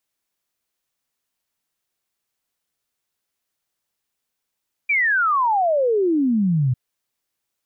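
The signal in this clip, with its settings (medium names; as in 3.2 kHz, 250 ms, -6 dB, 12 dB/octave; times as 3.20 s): log sweep 2.4 kHz -> 120 Hz 1.85 s -15.5 dBFS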